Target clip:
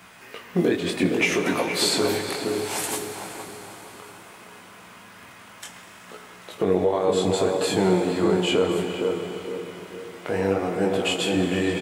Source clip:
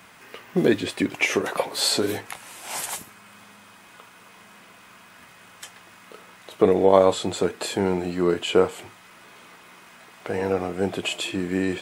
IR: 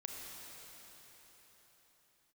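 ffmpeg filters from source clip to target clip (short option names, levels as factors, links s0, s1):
-filter_complex "[0:a]alimiter=limit=0.224:level=0:latency=1:release=192,flanger=delay=16:depth=7.7:speed=0.64,asplit=2[s0][s1];[s1]adelay=465,lowpass=f=980:p=1,volume=0.708,asplit=2[s2][s3];[s3]adelay=465,lowpass=f=980:p=1,volume=0.39,asplit=2[s4][s5];[s5]adelay=465,lowpass=f=980:p=1,volume=0.39,asplit=2[s6][s7];[s7]adelay=465,lowpass=f=980:p=1,volume=0.39,asplit=2[s8][s9];[s9]adelay=465,lowpass=f=980:p=1,volume=0.39[s10];[s0][s2][s4][s6][s8][s10]amix=inputs=6:normalize=0,asplit=2[s11][s12];[1:a]atrim=start_sample=2205[s13];[s12][s13]afir=irnorm=-1:irlink=0,volume=1.19[s14];[s11][s14]amix=inputs=2:normalize=0"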